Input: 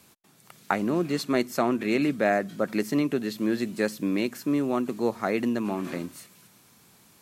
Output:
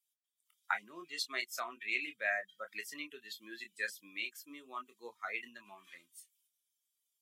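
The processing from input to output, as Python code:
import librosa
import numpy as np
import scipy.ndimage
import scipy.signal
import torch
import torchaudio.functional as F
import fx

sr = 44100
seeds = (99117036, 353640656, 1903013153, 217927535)

y = fx.bin_expand(x, sr, power=2.0)
y = fx.chorus_voices(y, sr, voices=4, hz=0.86, base_ms=25, depth_ms=1.7, mix_pct=30)
y = scipy.signal.sosfilt(scipy.signal.cheby1(2, 1.0, 2100.0, 'highpass', fs=sr, output='sos'), y)
y = fx.tilt_eq(y, sr, slope=-2.0)
y = y * librosa.db_to_amplitude(7.0)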